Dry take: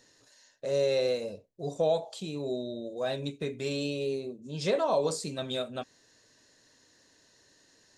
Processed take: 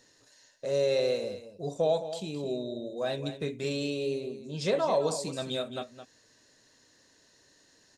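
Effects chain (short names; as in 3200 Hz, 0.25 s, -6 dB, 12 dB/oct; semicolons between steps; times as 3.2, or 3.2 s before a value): echo 0.215 s -11.5 dB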